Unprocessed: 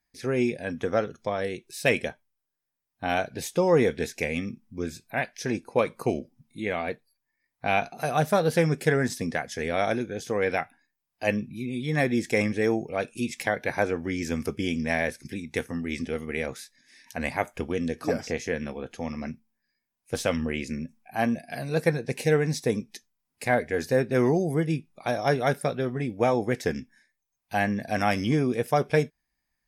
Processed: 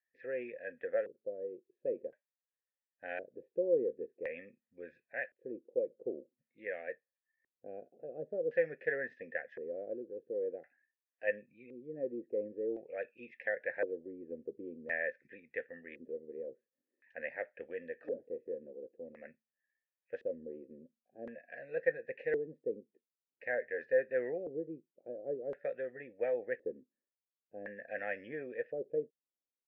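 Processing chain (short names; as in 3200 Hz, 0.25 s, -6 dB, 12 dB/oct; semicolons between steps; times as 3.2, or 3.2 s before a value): vowel filter e; LFO low-pass square 0.47 Hz 360–1800 Hz; gain -4.5 dB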